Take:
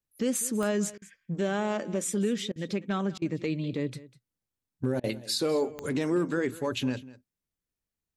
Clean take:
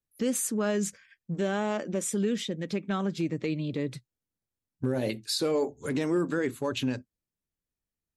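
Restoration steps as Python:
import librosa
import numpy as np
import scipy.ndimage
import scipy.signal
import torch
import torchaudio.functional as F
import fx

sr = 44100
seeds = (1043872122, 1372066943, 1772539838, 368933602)

y = fx.fix_declick_ar(x, sr, threshold=10.0)
y = fx.fix_interpolate(y, sr, at_s=(0.98, 2.52, 3.18, 5.0), length_ms=37.0)
y = fx.fix_echo_inverse(y, sr, delay_ms=198, level_db=-18.5)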